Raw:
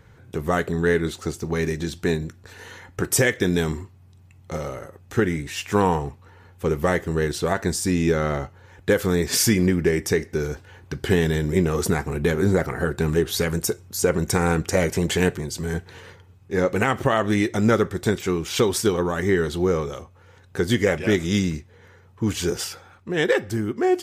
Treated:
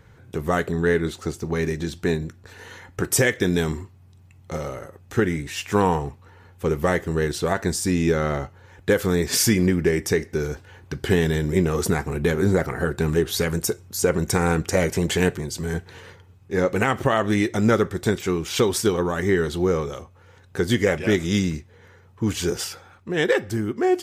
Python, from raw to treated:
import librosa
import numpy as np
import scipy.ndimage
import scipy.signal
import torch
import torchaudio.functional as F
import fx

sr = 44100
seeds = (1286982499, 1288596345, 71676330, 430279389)

y = fx.peak_eq(x, sr, hz=12000.0, db=-2.5, octaves=2.8, at=(0.71, 2.71))